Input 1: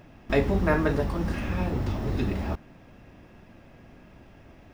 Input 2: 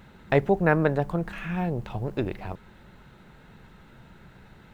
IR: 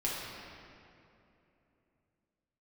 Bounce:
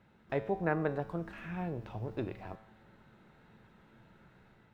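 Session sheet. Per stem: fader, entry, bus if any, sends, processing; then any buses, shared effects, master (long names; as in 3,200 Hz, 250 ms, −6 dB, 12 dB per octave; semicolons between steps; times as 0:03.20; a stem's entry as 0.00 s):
−13.0 dB, 0.00 s, no send, downward compressor, threshold −27 dBFS, peak gain reduction 10 dB
−4.0 dB, 0.00 s, polarity flipped, no send, high-shelf EQ 3,600 Hz −8 dB; automatic gain control gain up to 5 dB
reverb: not used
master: low-shelf EQ 62 Hz −11.5 dB; tuned comb filter 110 Hz, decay 0.82 s, harmonics all, mix 70%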